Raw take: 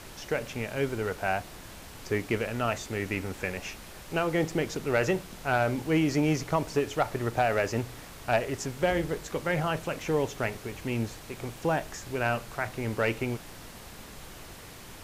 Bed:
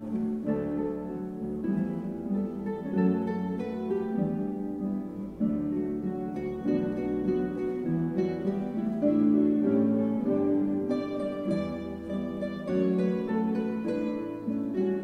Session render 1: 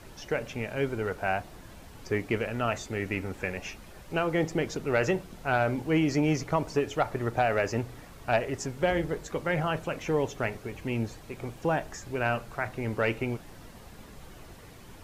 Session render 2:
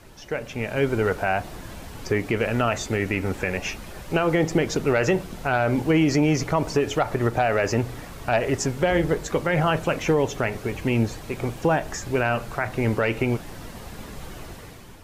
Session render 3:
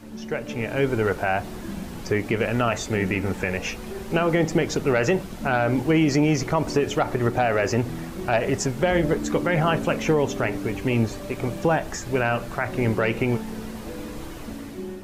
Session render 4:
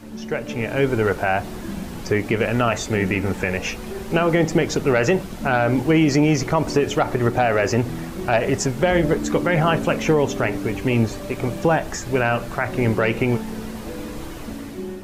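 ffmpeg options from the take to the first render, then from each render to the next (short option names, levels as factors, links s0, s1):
-af "afftdn=nr=8:nf=-46"
-af "dynaudnorm=f=190:g=7:m=3.16,alimiter=limit=0.282:level=0:latency=1:release=112"
-filter_complex "[1:a]volume=0.473[s0];[0:a][s0]amix=inputs=2:normalize=0"
-af "volume=1.41"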